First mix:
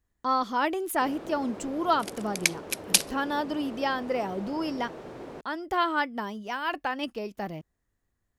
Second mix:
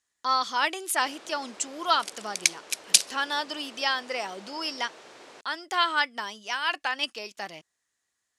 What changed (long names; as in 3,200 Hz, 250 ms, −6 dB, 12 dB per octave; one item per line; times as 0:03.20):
first sound −3.5 dB
second sound −7.5 dB
master: add meter weighting curve ITU-R 468